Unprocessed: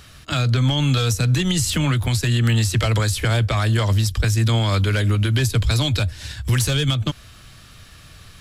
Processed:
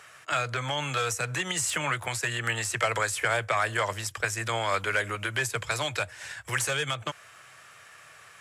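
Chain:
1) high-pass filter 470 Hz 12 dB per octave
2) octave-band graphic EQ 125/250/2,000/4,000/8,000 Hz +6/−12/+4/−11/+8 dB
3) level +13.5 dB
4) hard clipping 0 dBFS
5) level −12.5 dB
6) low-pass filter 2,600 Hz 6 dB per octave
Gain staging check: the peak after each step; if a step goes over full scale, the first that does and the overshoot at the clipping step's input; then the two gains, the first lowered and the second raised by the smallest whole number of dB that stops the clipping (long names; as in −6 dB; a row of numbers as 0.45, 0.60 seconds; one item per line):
−10.5, −8.5, +5.0, 0.0, −12.5, −13.0 dBFS
step 3, 5.0 dB
step 3 +8.5 dB, step 5 −7.5 dB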